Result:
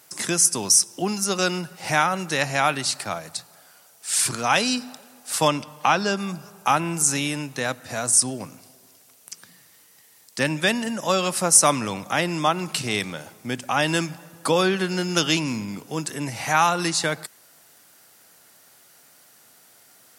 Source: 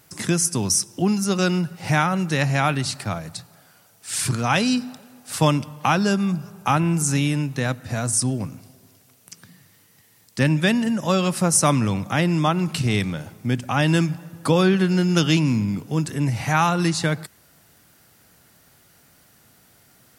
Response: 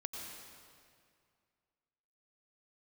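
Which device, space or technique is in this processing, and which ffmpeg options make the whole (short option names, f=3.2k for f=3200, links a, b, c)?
filter by subtraction: -filter_complex "[0:a]asettb=1/sr,asplit=3[a][b][c];[a]atrim=end=5.484[d];[b]atrim=start=5.48:end=6.17,asetpts=PTS-STARTPTS,afade=t=in:d=0.004:c=qsin,afade=t=out:st=0.686:d=0.004:c=qsin,acrossover=split=6400[e][f];[f]acompressor=threshold=-53dB:ratio=4:attack=1:release=60[g];[e][g]amix=inputs=2:normalize=0[h];[c]atrim=start=6.166[i];[d][h]acrossfade=d=0.004:c1=hsin:c2=qsin[j];[j][i]acrossfade=d=0.004:c1=qsin:c2=hsin,equalizer=f=8.5k:t=o:w=2.2:g=5.5,asplit=2[k][l];[l]lowpass=640,volume=-1[m];[k][m]amix=inputs=2:normalize=0,volume=-1dB"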